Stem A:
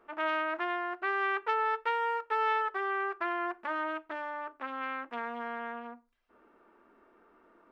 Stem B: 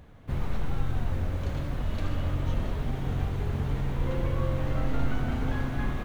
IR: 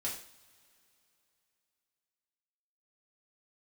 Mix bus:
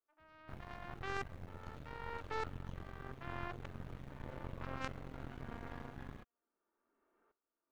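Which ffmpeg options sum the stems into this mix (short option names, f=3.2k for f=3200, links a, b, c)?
-filter_complex "[0:a]bandreject=f=50:t=h:w=6,bandreject=f=100:t=h:w=6,bandreject=f=150:t=h:w=6,bandreject=f=200:t=h:w=6,bandreject=f=250:t=h:w=6,bandreject=f=300:t=h:w=6,bandreject=f=350:t=h:w=6,alimiter=limit=-24dB:level=0:latency=1,aeval=exprs='val(0)*pow(10,-25*if(lt(mod(-0.82*n/s,1),2*abs(-0.82)/1000),1-mod(-0.82*n/s,1)/(2*abs(-0.82)/1000),(mod(-0.82*n/s,1)-2*abs(-0.82)/1000)/(1-2*abs(-0.82)/1000))/20)':c=same,volume=-5dB,asplit=2[a][b];[b]volume=-15.5dB[c];[1:a]highpass=43,adelay=200,volume=-13.5dB[d];[2:a]atrim=start_sample=2205[e];[c][e]afir=irnorm=-1:irlink=0[f];[a][d][f]amix=inputs=3:normalize=0,aeval=exprs='0.0596*(cos(1*acos(clip(val(0)/0.0596,-1,1)))-cos(1*PI/2))+0.0266*(cos(2*acos(clip(val(0)/0.0596,-1,1)))-cos(2*PI/2))+0.0119*(cos(3*acos(clip(val(0)/0.0596,-1,1)))-cos(3*PI/2))+0.0133*(cos(4*acos(clip(val(0)/0.0596,-1,1)))-cos(4*PI/2))+0.0106*(cos(6*acos(clip(val(0)/0.0596,-1,1)))-cos(6*PI/2))':c=same"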